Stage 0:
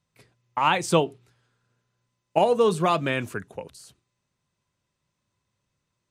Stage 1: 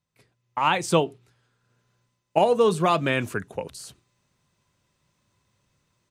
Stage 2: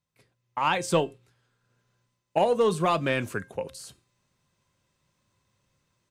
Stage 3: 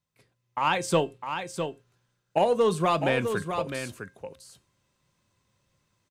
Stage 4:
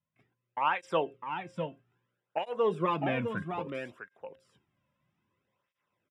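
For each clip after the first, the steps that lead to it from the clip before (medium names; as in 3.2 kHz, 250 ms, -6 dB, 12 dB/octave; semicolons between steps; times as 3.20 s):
level rider gain up to 13 dB; trim -5 dB
saturation -7.5 dBFS, distortion -24 dB; feedback comb 530 Hz, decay 0.33 s, mix 60%; trim +5 dB
delay 656 ms -7.5 dB
Savitzky-Golay filter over 25 samples; cancelling through-zero flanger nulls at 0.61 Hz, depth 2.7 ms; trim -2 dB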